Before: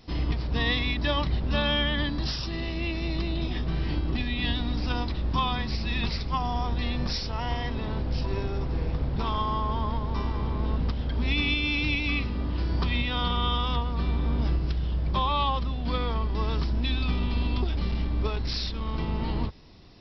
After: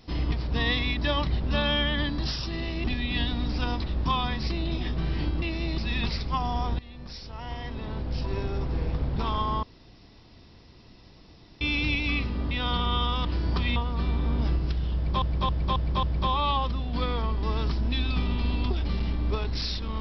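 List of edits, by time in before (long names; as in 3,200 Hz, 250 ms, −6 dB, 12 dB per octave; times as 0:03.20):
0:02.84–0:03.20: swap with 0:04.12–0:05.78
0:06.79–0:08.54: fade in, from −20 dB
0:09.63–0:11.61: fill with room tone
0:12.51–0:13.02: move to 0:13.76
0:14.95–0:15.22: repeat, 5 plays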